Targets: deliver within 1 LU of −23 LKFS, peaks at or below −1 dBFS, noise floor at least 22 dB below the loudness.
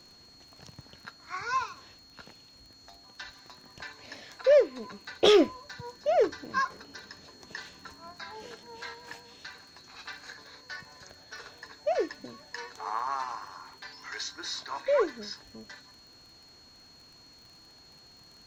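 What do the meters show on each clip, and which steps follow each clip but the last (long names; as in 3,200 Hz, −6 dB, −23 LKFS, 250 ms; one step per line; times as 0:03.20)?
crackle rate 28 per second; interfering tone 4,300 Hz; level of the tone −54 dBFS; integrated loudness −30.0 LKFS; sample peak −8.0 dBFS; target loudness −23.0 LKFS
→ click removal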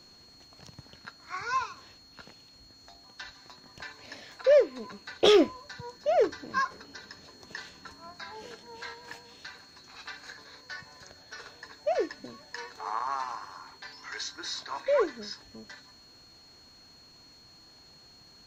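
crackle rate 0.054 per second; interfering tone 4,300 Hz; level of the tone −54 dBFS
→ notch filter 4,300 Hz, Q 30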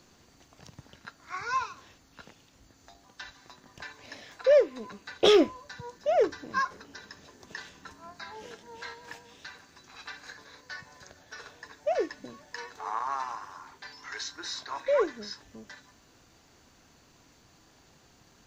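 interfering tone none found; integrated loudness −29.0 LKFS; sample peak −8.0 dBFS; target loudness −23.0 LKFS
→ level +6 dB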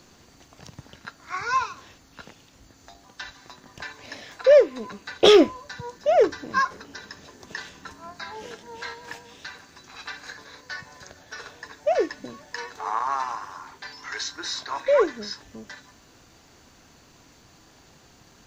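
integrated loudness −23.0 LKFS; sample peak −2.0 dBFS; background noise floor −55 dBFS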